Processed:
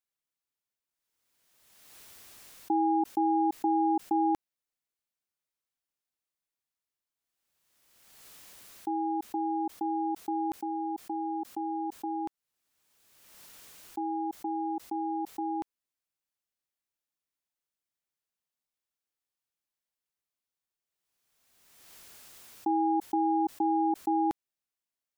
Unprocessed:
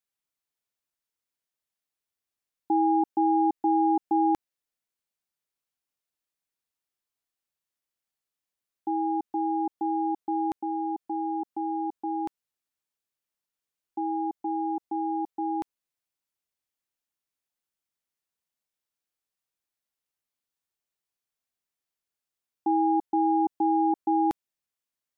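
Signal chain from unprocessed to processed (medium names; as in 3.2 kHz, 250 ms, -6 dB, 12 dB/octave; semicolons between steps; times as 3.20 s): swell ahead of each attack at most 36 dB/s; trim -3.5 dB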